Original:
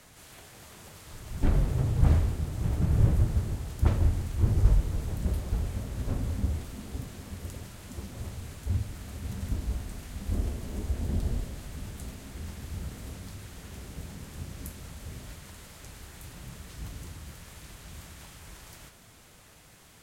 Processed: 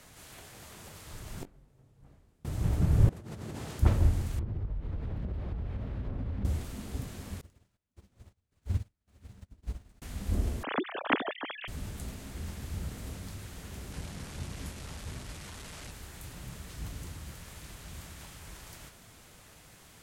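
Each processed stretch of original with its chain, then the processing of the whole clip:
0:01.27–0:02.45: parametric band 68 Hz −11 dB 1.3 octaves + gate with flip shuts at −28 dBFS, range −31 dB + double-tracking delay 21 ms −10 dB
0:03.09–0:03.79: high-pass filter 170 Hz + high-shelf EQ 10,000 Hz −9.5 dB + compressor whose output falls as the input rises −42 dBFS
0:04.39–0:06.45: high-frequency loss of the air 360 metres + downward compressor 16 to 1, threshold −30 dBFS
0:07.41–0:10.02: running median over 3 samples + square-wave tremolo 1.8 Hz, depth 60%, duty 65% + expander for the loud parts 2.5 to 1, over −49 dBFS
0:10.63–0:11.68: three sine waves on the formant tracks + spectral tilt +3.5 dB per octave
0:13.92–0:15.91: linear delta modulator 64 kbit/s, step −38 dBFS + high-shelf EQ 8,400 Hz −6 dB
whole clip: no processing

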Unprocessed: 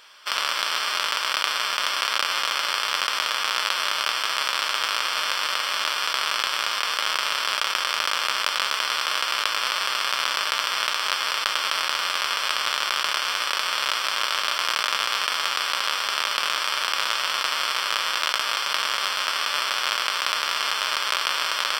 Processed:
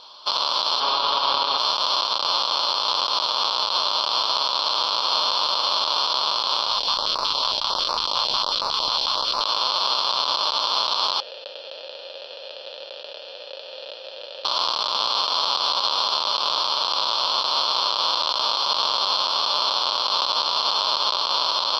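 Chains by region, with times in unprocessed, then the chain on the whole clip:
0:00.80–0:01.58: high-frequency loss of the air 170 metres + comb filter 7.2 ms, depth 99%
0:06.70–0:09.41: low-shelf EQ 130 Hz +11.5 dB + notch on a step sequencer 11 Hz 330–3,200 Hz
0:11.20–0:14.45: formant filter e + low-shelf EQ 65 Hz +10 dB
whole clip: drawn EQ curve 420 Hz 0 dB, 1,000 Hz +5 dB, 1,900 Hz −26 dB, 4,100 Hz +8 dB, 8,100 Hz −25 dB; brickwall limiter −15.5 dBFS; level +6.5 dB

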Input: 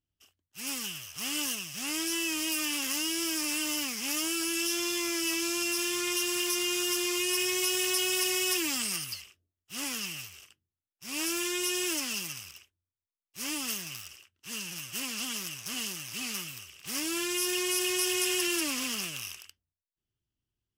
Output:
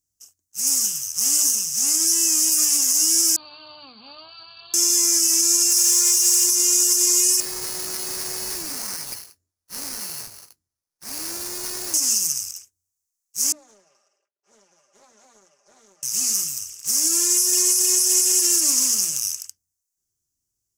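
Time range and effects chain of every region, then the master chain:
0:03.36–0:04.74: linear-phase brick-wall low-pass 4,700 Hz + phaser with its sweep stopped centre 810 Hz, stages 4
0:05.70–0:06.44: converter with a step at zero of −31.5 dBFS + low-shelf EQ 490 Hz −7 dB
0:07.40–0:11.94: sample-rate reduction 7,200 Hz + downward compressor 2.5 to 1, threshold −35 dBFS
0:13.52–0:16.03: four-pole ladder band-pass 630 Hz, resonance 60% + comb filter 5 ms, depth 91% + highs frequency-modulated by the lows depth 0.3 ms
whole clip: high shelf with overshoot 4,500 Hz +13.5 dB, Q 3; mains-hum notches 60/120/180/240/300 Hz; brickwall limiter −7 dBFS

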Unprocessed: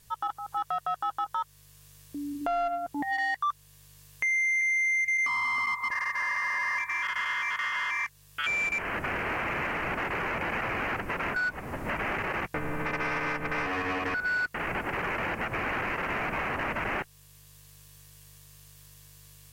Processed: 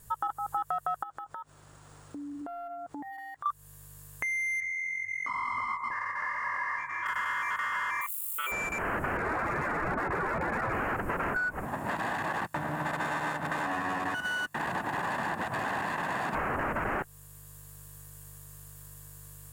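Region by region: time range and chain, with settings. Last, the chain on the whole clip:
0:01.03–0:03.46: low-shelf EQ 64 Hz −11 dB + downward compressor 20 to 1, threshold −42 dBFS + linearly interpolated sample-rate reduction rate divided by 3×
0:04.60–0:07.06: high-frequency loss of the air 83 metres + micro pitch shift up and down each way 36 cents
0:08.01–0:08.52: spike at every zero crossing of −34.5 dBFS + high-pass filter 360 Hz + phaser with its sweep stopped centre 1,100 Hz, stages 8
0:09.17–0:10.73: expanding power law on the bin magnitudes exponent 1.8 + hard clipping −27.5 dBFS
0:11.65–0:16.35: lower of the sound and its delayed copy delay 1.1 ms + high-pass filter 150 Hz + high-shelf EQ 9,700 Hz −6.5 dB
whole clip: flat-topped bell 3,400 Hz −10.5 dB; notch filter 6,100 Hz, Q 14; downward compressor, threshold −33 dBFS; level +5 dB

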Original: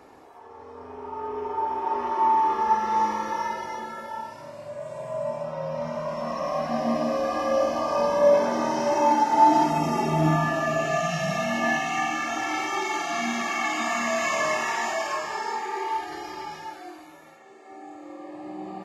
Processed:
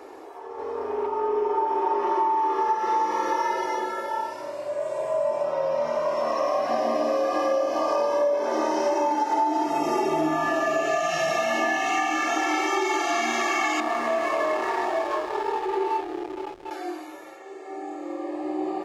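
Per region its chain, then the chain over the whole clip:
0:00.58–0:01.07: high-shelf EQ 7,600 Hz −5.5 dB + leveller curve on the samples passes 1
0:13.80–0:16.71: low-pass filter 1,100 Hz 6 dB per octave + slack as between gear wheels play −32.5 dBFS
whole clip: low shelf with overshoot 260 Hz −10 dB, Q 3; downward compressor 12 to 1, threshold −25 dBFS; level +5 dB

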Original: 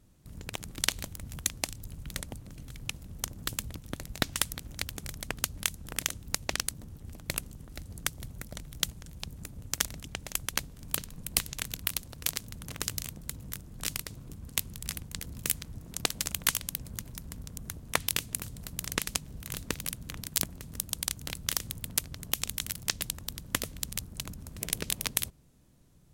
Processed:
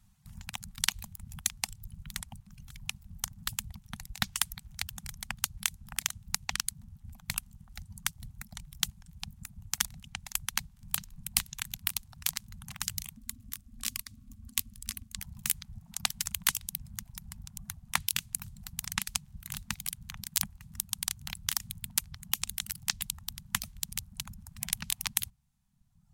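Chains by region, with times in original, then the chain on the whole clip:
0:13.17–0:15.18: phaser with its sweep stopped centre 400 Hz, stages 4 + hollow resonant body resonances 250/1,100 Hz, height 16 dB, ringing for 40 ms
whole clip: mains-hum notches 60/120/180 Hz; reverb reduction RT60 1.3 s; Chebyshev band-stop filter 210–780 Hz, order 3

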